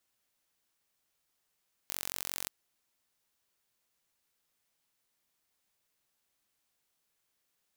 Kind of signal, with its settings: pulse train 45.6 per s, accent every 0, -9 dBFS 0.58 s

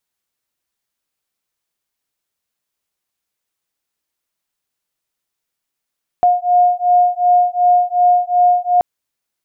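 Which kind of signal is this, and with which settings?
beating tones 713 Hz, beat 2.7 Hz, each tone -13 dBFS 2.58 s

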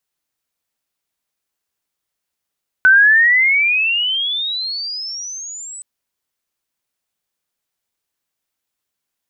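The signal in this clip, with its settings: sweep logarithmic 1.5 kHz -> 8.1 kHz -5.5 dBFS -> -29.5 dBFS 2.97 s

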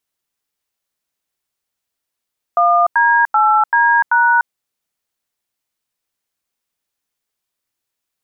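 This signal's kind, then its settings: DTMF "1D8D#", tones 296 ms, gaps 90 ms, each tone -12 dBFS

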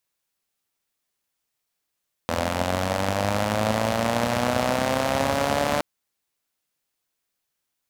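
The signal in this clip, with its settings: four-cylinder engine model, changing speed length 3.52 s, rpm 2500, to 4400, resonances 100/220/570 Hz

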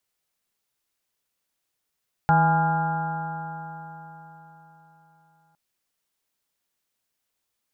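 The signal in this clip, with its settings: stretched partials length 3.26 s, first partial 159 Hz, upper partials -19/-17/-13.5/2.5/-12/-18/-5/-16 dB, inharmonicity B 0.0033, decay 4.11 s, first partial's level -19 dB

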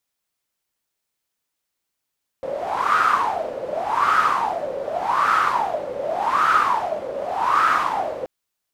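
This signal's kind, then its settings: wind-like swept noise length 5.83 s, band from 530 Hz, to 1.3 kHz, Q 10, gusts 5, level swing 11 dB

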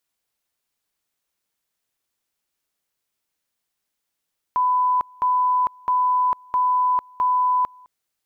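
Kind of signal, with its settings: two-level tone 1 kHz -16 dBFS, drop 28 dB, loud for 0.45 s, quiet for 0.21 s, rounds 5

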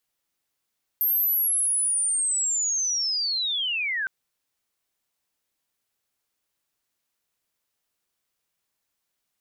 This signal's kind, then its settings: sweep linear 13 kHz -> 1.5 kHz -19.5 dBFS -> -24.5 dBFS 3.06 s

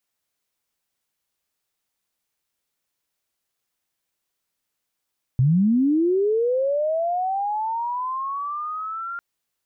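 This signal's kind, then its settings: sweep linear 120 Hz -> 1.4 kHz -14 dBFS -> -28 dBFS 3.80 s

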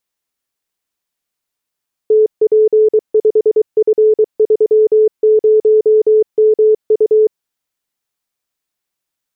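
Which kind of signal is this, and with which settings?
Morse "TP5F30MU" 23 wpm 432 Hz -6 dBFS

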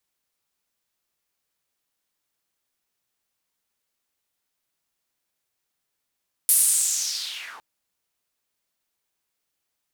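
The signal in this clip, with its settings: swept filtered noise white, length 1.11 s bandpass, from 11 kHz, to 740 Hz, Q 3.7, linear, gain ramp -19 dB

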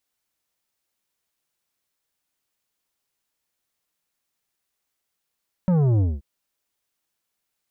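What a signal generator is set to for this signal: sub drop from 190 Hz, over 0.53 s, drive 10 dB, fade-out 0.21 s, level -17 dB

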